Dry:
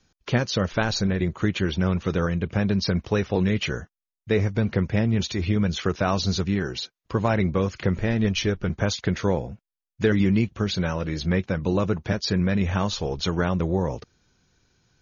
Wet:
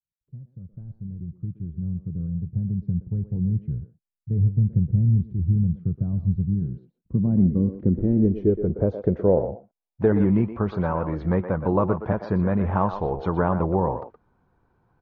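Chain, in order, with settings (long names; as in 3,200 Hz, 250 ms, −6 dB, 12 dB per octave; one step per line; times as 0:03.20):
fade in at the beginning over 4.37 s
far-end echo of a speakerphone 120 ms, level −9 dB
low-pass filter sweep 140 Hz → 980 Hz, 0:06.51–0:10.36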